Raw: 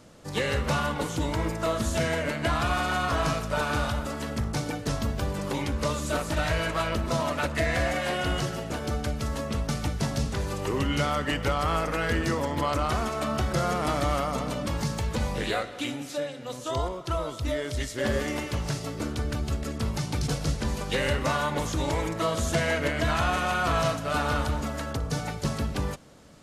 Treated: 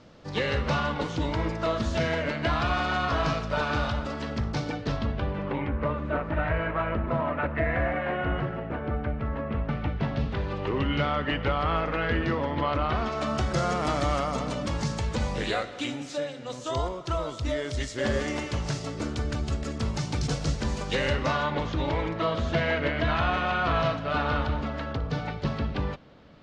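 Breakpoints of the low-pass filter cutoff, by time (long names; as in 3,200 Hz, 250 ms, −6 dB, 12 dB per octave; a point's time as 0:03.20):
low-pass filter 24 dB per octave
0:04.71 5,200 Hz
0:05.74 2,200 Hz
0:09.38 2,200 Hz
0:10.36 3,600 Hz
0:12.92 3,600 Hz
0:13.33 7,600 Hz
0:20.83 7,600 Hz
0:21.67 4,000 Hz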